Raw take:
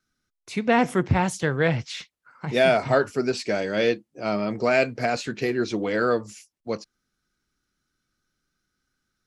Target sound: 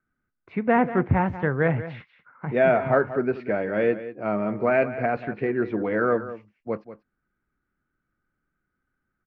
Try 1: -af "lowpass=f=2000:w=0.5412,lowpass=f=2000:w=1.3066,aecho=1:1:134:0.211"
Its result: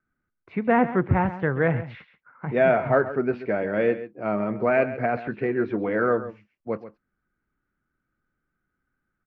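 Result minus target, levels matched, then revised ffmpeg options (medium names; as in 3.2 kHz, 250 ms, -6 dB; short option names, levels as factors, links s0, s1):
echo 54 ms early
-af "lowpass=f=2000:w=0.5412,lowpass=f=2000:w=1.3066,aecho=1:1:188:0.211"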